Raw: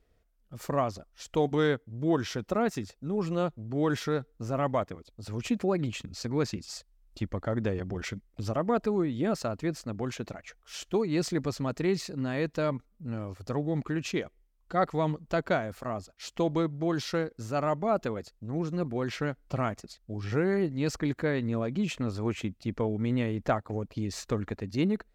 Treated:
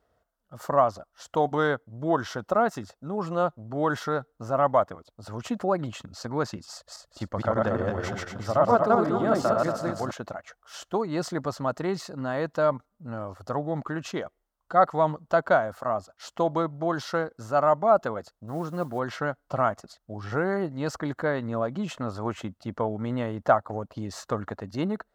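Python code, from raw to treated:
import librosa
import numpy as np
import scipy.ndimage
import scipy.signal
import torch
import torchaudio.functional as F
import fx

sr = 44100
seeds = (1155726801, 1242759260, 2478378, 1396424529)

y = fx.reverse_delay_fb(x, sr, ms=117, feedback_pct=54, wet_db=0.0, at=(6.73, 10.11))
y = fx.mod_noise(y, sr, seeds[0], snr_db=27, at=(18.47, 18.98), fade=0.02)
y = scipy.signal.sosfilt(scipy.signal.butter(2, 72.0, 'highpass', fs=sr, output='sos'), y)
y = fx.band_shelf(y, sr, hz=920.0, db=10.0, octaves=1.7)
y = fx.notch(y, sr, hz=2400.0, q=7.4)
y = F.gain(torch.from_numpy(y), -1.5).numpy()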